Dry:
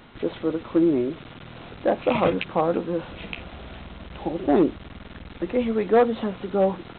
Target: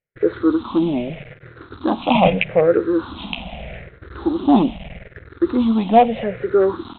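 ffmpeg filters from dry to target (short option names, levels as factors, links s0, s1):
-af "afftfilt=real='re*pow(10,20/40*sin(2*PI*(0.51*log(max(b,1)*sr/1024/100)/log(2)-(-0.8)*(pts-256)/sr)))':imag='im*pow(10,20/40*sin(2*PI*(0.51*log(max(b,1)*sr/1024/100)/log(2)-(-0.8)*(pts-256)/sr)))':win_size=1024:overlap=0.75,agate=range=0.00447:threshold=0.0158:ratio=16:detection=peak,volume=1.26"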